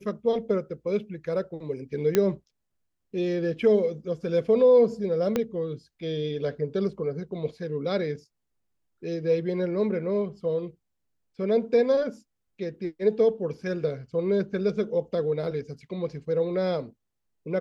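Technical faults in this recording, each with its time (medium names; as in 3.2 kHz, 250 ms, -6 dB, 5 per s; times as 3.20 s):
2.15 s: pop -8 dBFS
5.36 s: pop -12 dBFS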